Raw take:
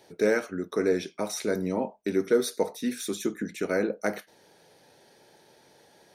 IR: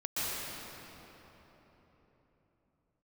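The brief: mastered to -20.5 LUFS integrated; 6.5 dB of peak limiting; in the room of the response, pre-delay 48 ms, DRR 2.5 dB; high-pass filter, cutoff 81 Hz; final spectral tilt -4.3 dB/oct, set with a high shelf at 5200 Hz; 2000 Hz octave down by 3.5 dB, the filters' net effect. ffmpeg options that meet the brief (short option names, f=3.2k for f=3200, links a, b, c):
-filter_complex "[0:a]highpass=81,equalizer=f=2k:t=o:g=-5.5,highshelf=f=5.2k:g=4.5,alimiter=limit=-18dB:level=0:latency=1,asplit=2[a][b];[1:a]atrim=start_sample=2205,adelay=48[c];[b][c]afir=irnorm=-1:irlink=0,volume=-10dB[d];[a][d]amix=inputs=2:normalize=0,volume=8.5dB"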